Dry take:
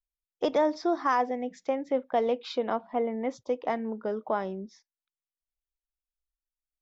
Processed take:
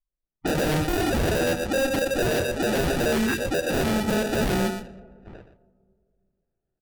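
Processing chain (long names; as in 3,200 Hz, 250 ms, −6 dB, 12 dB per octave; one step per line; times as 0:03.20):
every frequency bin delayed by itself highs late, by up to 853 ms
in parallel at +2 dB: downward compressor, threshold −35 dBFS, peak gain reduction 12.5 dB
on the sum: decimation without filtering 41×
noise gate −57 dBFS, range −12 dB
on a send at −22 dB: convolution reverb RT60 2.2 s, pre-delay 3 ms
on the sum: brickwall limiter −23 dBFS, peak gain reduction 8.5 dB
low-pass that shuts in the quiet parts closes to 2,000 Hz, open at −31 dBFS
single-tap delay 121 ms −11.5 dB
time-frequency box erased 0:03.15–0:03.38, 470–1,400 Hz
sine wavefolder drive 10 dB, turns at −19.5 dBFS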